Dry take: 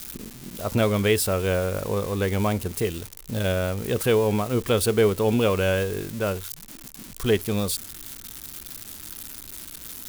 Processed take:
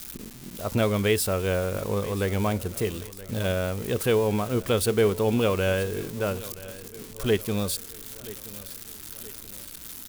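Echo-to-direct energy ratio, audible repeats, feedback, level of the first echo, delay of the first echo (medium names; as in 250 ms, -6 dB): -17.0 dB, 3, 46%, -18.0 dB, 975 ms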